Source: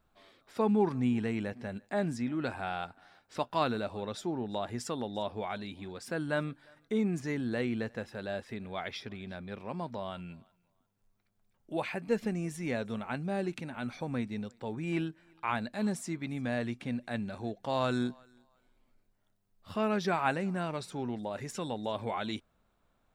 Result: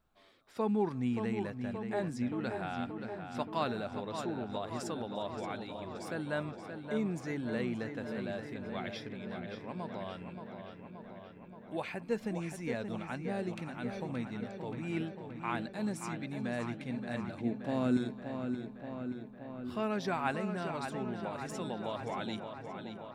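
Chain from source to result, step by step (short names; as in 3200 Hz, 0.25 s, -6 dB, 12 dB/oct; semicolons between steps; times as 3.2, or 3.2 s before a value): 17.4–17.97 graphic EQ 250/1000/4000 Hz +11/-7/-8 dB; on a send: darkening echo 0.576 s, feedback 72%, low-pass 4400 Hz, level -7 dB; on the sum: gain -4 dB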